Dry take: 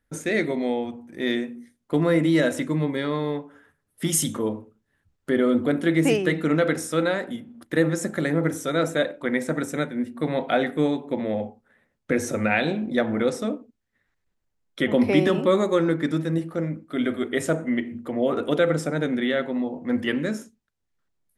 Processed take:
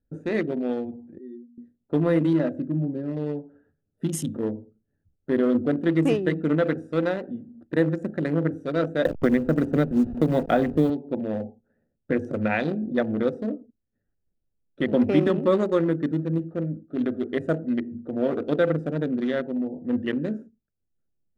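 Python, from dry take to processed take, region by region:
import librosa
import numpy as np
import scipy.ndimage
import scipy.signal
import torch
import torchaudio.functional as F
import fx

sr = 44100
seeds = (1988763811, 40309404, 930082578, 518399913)

y = fx.chain(x, sr, fx.spec_expand(power=2.9),
    fx.highpass(hz=1400.0, slope=6), at=(1.18, 1.58))
y = fx.chain(y, sr, fx.high_shelf(hz=2100.0, db=-12.0),
    fx.notch_comb(f0_hz=460.0), at=(2.33, 3.17))
y = fx.chain(y, sr, fx.delta_hold(step_db=-34.0),
    fx.low_shelf(hz=460.0, db=6.5),
    fx.band_squash(depth_pct=100), at=(9.05, 10.9))
y = fx.wiener(y, sr, points=41)
y = fx.high_shelf(y, sr, hz=3500.0, db=-10.5)
y = fx.notch(y, sr, hz=2200.0, q=13.0)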